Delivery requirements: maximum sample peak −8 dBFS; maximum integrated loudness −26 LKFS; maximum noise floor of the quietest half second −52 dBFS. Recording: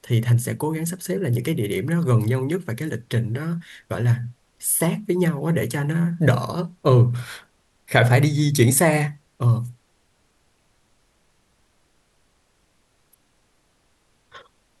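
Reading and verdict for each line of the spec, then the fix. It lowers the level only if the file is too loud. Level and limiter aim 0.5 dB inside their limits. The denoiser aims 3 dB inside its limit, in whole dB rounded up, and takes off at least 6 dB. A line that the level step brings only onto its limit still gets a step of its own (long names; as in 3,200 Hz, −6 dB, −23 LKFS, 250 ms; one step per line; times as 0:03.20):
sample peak −2.0 dBFS: out of spec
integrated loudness −21.5 LKFS: out of spec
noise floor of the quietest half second −64 dBFS: in spec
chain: level −5 dB
brickwall limiter −8.5 dBFS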